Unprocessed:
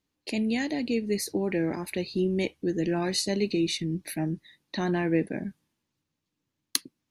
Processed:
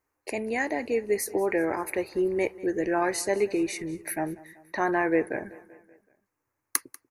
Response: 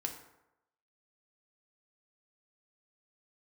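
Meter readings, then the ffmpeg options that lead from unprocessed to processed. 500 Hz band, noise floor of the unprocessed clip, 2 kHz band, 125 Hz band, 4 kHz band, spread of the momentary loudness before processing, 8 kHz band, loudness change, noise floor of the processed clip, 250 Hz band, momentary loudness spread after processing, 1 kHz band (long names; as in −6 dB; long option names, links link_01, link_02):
+3.5 dB, −83 dBFS, +5.0 dB, −10.5 dB, −10.0 dB, 7 LU, +1.5 dB, +1.0 dB, −82 dBFS, −2.5 dB, 8 LU, +8.0 dB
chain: -af "firequalizer=gain_entry='entry(120,0);entry(170,-12);entry(390,5);entry(900,10);entry(1300,10);entry(2200,5);entry(3300,-15);entry(5800,-1);entry(11000,6)':delay=0.05:min_phase=1,aecho=1:1:191|382|573|764:0.0944|0.0538|0.0307|0.0175,volume=-1dB"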